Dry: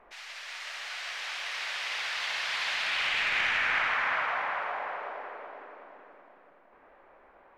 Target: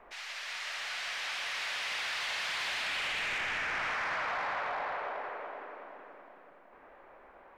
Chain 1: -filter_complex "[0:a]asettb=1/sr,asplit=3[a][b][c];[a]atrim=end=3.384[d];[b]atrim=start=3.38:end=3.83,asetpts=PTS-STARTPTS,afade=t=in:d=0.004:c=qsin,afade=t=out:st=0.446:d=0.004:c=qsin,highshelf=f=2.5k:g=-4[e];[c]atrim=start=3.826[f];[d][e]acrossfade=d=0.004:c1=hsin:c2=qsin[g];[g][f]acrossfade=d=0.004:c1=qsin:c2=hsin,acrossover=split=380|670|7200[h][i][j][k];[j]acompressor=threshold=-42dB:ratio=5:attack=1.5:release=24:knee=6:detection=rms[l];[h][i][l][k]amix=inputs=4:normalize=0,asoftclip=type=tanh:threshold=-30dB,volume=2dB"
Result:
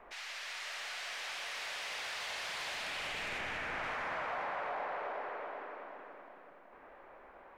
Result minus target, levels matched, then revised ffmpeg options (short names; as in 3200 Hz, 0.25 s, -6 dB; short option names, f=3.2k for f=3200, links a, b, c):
compressor: peak gain reduction +8.5 dB
-filter_complex "[0:a]asettb=1/sr,asplit=3[a][b][c];[a]atrim=end=3.384[d];[b]atrim=start=3.38:end=3.83,asetpts=PTS-STARTPTS,afade=t=in:d=0.004:c=qsin,afade=t=out:st=0.446:d=0.004:c=qsin,highshelf=f=2.5k:g=-4[e];[c]atrim=start=3.826[f];[d][e]acrossfade=d=0.004:c1=hsin:c2=qsin[g];[g][f]acrossfade=d=0.004:c1=qsin:c2=hsin,acrossover=split=380|670|7200[h][i][j][k];[j]acompressor=threshold=-31.5dB:ratio=5:attack=1.5:release=24:knee=6:detection=rms[l];[h][i][l][k]amix=inputs=4:normalize=0,asoftclip=type=tanh:threshold=-30dB,volume=2dB"